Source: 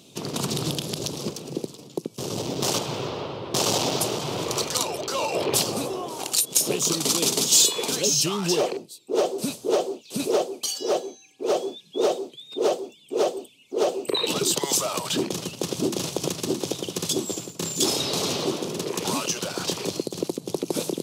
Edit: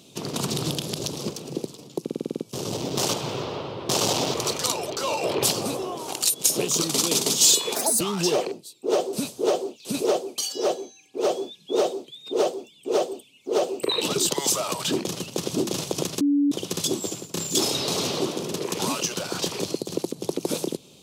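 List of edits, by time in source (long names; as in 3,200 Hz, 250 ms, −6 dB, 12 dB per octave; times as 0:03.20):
0:02.03: stutter 0.05 s, 8 plays
0:03.99–0:04.45: remove
0:07.86–0:08.26: play speed 156%
0:16.46–0:16.77: beep over 286 Hz −17 dBFS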